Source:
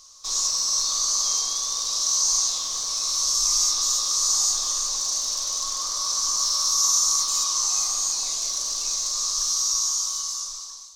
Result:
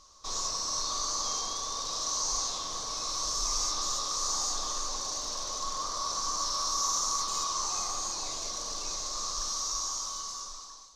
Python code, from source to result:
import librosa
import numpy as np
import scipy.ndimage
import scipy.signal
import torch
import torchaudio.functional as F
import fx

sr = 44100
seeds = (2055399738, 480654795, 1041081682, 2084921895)

y = fx.lowpass(x, sr, hz=1000.0, slope=6)
y = y * librosa.db_to_amplitude(5.0)